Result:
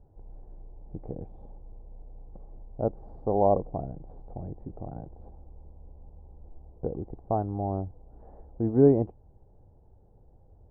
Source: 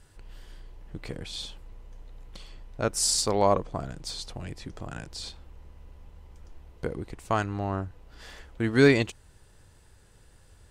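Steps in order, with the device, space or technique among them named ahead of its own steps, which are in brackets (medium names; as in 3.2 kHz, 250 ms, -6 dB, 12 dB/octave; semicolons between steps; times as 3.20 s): under water (low-pass 680 Hz 24 dB/octave; peaking EQ 790 Hz +9 dB 0.41 oct)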